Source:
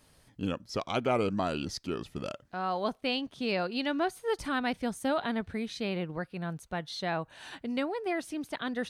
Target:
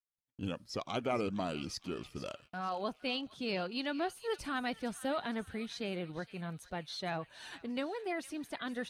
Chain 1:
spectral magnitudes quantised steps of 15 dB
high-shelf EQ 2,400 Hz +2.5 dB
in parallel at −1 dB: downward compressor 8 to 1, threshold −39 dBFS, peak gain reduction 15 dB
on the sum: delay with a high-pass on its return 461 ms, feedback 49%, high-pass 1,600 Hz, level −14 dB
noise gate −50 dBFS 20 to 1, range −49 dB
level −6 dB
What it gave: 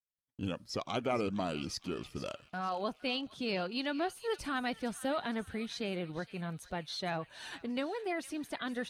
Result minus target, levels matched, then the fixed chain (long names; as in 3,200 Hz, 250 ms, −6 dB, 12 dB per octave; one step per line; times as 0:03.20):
downward compressor: peak gain reduction −10.5 dB
spectral magnitudes quantised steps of 15 dB
high-shelf EQ 2,400 Hz +2.5 dB
in parallel at −1 dB: downward compressor 8 to 1, threshold −51 dBFS, peak gain reduction 25.5 dB
on the sum: delay with a high-pass on its return 461 ms, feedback 49%, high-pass 1,600 Hz, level −14 dB
noise gate −50 dBFS 20 to 1, range −49 dB
level −6 dB